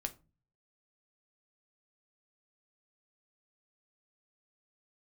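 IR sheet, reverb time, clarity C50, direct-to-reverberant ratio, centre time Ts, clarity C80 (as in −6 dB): 0.30 s, 17.5 dB, 6.0 dB, 5 ms, 25.0 dB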